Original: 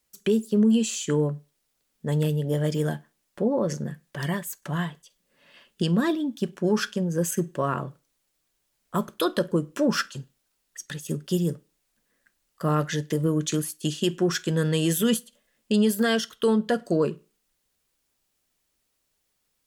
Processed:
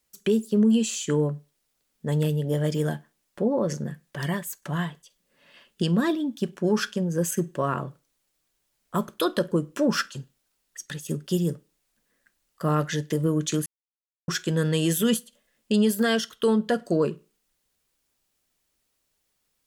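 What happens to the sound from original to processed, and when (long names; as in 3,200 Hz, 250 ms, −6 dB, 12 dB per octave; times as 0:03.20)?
0:13.66–0:14.28: silence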